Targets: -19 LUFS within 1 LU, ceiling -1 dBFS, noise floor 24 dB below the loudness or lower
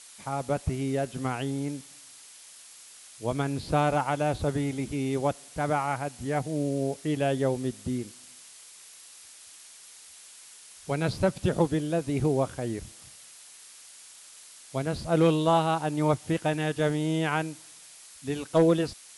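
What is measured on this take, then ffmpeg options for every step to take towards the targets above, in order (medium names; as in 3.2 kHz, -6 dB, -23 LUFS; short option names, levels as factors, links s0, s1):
noise floor -50 dBFS; noise floor target -52 dBFS; loudness -28.0 LUFS; peak level -12.0 dBFS; loudness target -19.0 LUFS
-> -af "afftdn=nr=6:nf=-50"
-af "volume=2.82"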